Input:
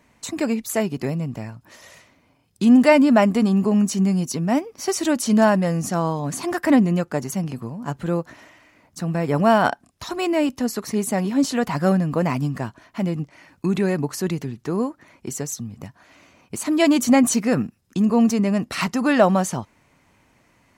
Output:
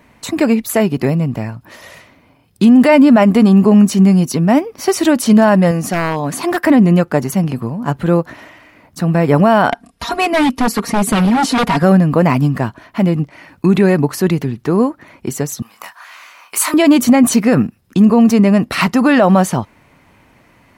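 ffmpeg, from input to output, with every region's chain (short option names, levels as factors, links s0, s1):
-filter_complex "[0:a]asettb=1/sr,asplit=3[s0][s1][s2];[s0]atrim=end=5.714[s3];[s1]atrim=start=5.71:end=6.66,asetpts=PTS-STARTPTS,afade=t=in:d=0.004:c=qsin,afade=t=out:st=0.946:d=0.004:c=qsin,lowshelf=f=180:g=-9.5,aeval=exprs='0.119*(abs(mod(val(0)/0.119+3,4)-2)-1)':c=same[s4];[s2]atrim=start=6.656[s5];[s3][s4]acrossfade=d=0.004:c1=hsin:c2=qsin[s6];[s6][s5]acrossfade=d=0.004:c1=qsin:c2=hsin,asettb=1/sr,asplit=3[s7][s8][s9];[s7]atrim=end=9.714[s10];[s8]atrim=start=9.71:end=11.83,asetpts=PTS-STARTPTS,afade=t=in:d=0.004:c=qsin,afade=t=out:st=2.116:d=0.004:c=qsin,aecho=1:1:4.3:0.87,atrim=end_sample=93492,aeval=exprs='0.133*(abs(mod(val(0)/0.133+3,4)-2)-1)':c=same,lowpass=f=12000:w=0.5412,lowpass=f=12000:w=1.3066[s11];[s9]atrim=start=11.826[s12];[s10][s11]acrossfade=d=0.004:c1=hsin:c2=qsin[s13];[s13][s12]acrossfade=d=0.004:c1=qsin:c2=hsin,asettb=1/sr,asplit=3[s14][s15][s16];[s14]atrim=end=15.624[s17];[s15]atrim=start=15.62:end=16.74,asetpts=PTS-STARTPTS,afade=t=in:d=0.004:c=qsin,afade=t=out:st=1.116:d=0.004:c=qsin,highpass=f=1100:t=q:w=2.1,highshelf=f=3900:g=10.5,asplit=2[s18][s19];[s19]adelay=26,volume=0.531[s20];[s18][s20]amix=inputs=2:normalize=0,atrim=end_sample=49392[s21];[s16]atrim=start=16.736[s22];[s17][s21]acrossfade=d=0.004:c1=hsin:c2=qsin[s23];[s23][s22]acrossfade=d=0.004:c1=qsin:c2=hsin,equalizer=f=6800:w=1.2:g=-8,alimiter=level_in=3.55:limit=0.891:release=50:level=0:latency=1,volume=0.891"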